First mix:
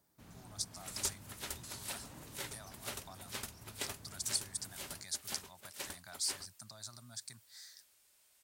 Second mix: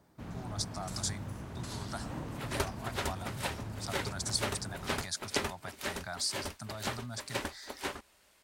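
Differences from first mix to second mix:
second sound: entry +1.55 s; master: remove pre-emphasis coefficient 0.8

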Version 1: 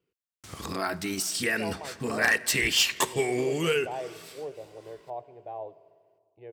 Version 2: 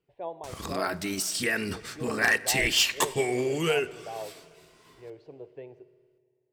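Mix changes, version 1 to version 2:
speech: entry -1.40 s; master: remove HPF 53 Hz

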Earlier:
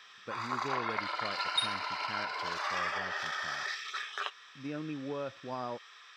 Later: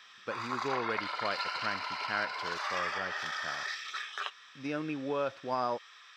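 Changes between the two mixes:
speech +8.5 dB; second sound: muted; master: add low shelf 340 Hz -10.5 dB

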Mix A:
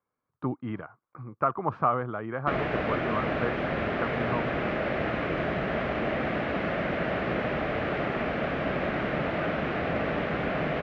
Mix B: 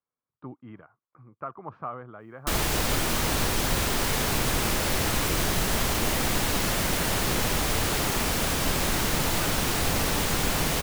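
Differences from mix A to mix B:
speech -10.5 dB; background: remove speaker cabinet 100–2300 Hz, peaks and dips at 100 Hz -9 dB, 620 Hz +7 dB, 940 Hz -8 dB

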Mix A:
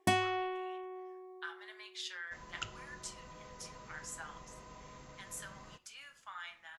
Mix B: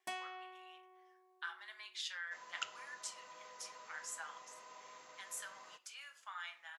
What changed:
first sound -11.5 dB; master: add HPF 630 Hz 12 dB/oct

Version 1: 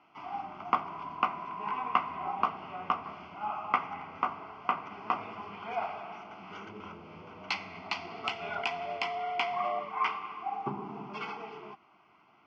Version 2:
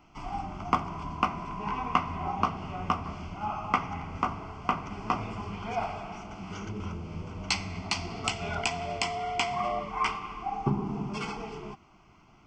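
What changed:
first sound: remove air absorption 260 m; master: remove weighting filter A

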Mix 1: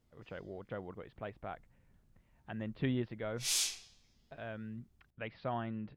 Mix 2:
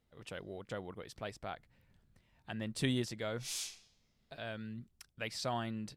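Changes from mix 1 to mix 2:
speech: remove Bessel low-pass 1900 Hz, order 8; background -8.0 dB

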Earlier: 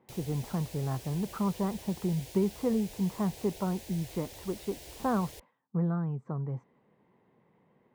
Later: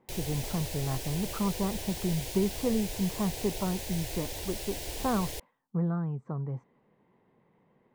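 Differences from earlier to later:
background +9.0 dB; master: remove HPF 42 Hz

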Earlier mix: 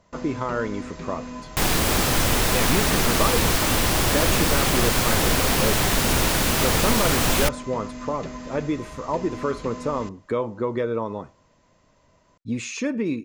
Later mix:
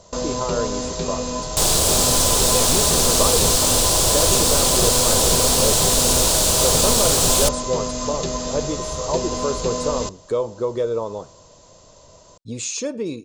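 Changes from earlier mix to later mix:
first sound +11.0 dB; master: add ten-band EQ 250 Hz -7 dB, 500 Hz +6 dB, 2000 Hz -11 dB, 4000 Hz +6 dB, 8000 Hz +11 dB

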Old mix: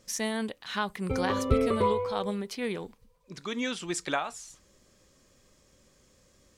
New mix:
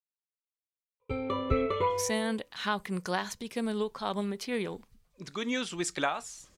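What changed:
speech: entry +1.90 s; background: add tilt shelf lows -4 dB, about 1300 Hz

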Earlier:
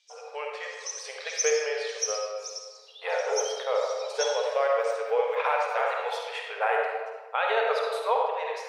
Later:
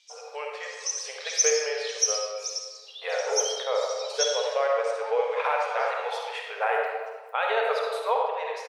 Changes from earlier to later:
first sound +6.0 dB; second sound: entry +1.95 s

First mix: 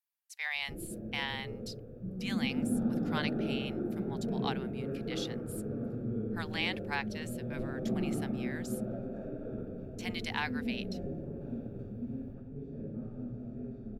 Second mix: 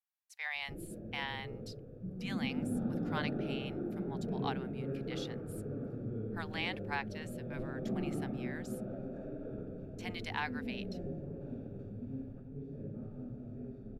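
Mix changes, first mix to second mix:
speech: add high shelf 2400 Hz -8 dB; reverb: off

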